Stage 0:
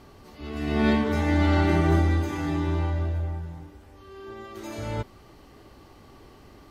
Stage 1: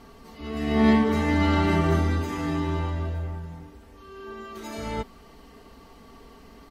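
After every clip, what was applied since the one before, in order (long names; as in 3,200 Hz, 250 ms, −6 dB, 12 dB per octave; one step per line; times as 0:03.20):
comb filter 4.4 ms, depth 66%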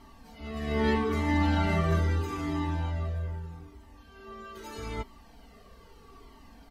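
flanger whose copies keep moving one way falling 0.79 Hz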